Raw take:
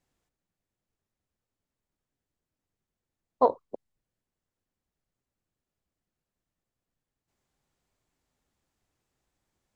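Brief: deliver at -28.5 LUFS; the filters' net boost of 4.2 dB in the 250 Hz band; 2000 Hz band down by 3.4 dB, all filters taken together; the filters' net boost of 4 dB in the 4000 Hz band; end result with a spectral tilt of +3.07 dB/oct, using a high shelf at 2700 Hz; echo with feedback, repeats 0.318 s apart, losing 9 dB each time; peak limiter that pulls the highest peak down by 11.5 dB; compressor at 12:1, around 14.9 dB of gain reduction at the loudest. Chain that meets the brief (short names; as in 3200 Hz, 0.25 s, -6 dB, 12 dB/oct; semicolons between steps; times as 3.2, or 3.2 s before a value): bell 250 Hz +4.5 dB; bell 2000 Hz -5 dB; high shelf 2700 Hz -4 dB; bell 4000 Hz +8 dB; compressor 12:1, threshold -30 dBFS; limiter -29.5 dBFS; feedback echo 0.318 s, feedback 35%, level -9 dB; gain +20.5 dB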